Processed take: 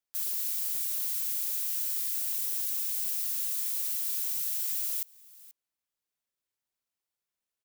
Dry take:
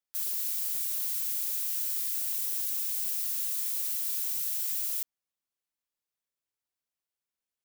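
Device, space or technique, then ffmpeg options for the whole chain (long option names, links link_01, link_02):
ducked delay: -filter_complex "[0:a]asplit=3[link_01][link_02][link_03];[link_02]adelay=482,volume=-7.5dB[link_04];[link_03]apad=whole_len=358290[link_05];[link_04][link_05]sidechaincompress=threshold=-48dB:ratio=5:attack=8.2:release=896[link_06];[link_01][link_06]amix=inputs=2:normalize=0"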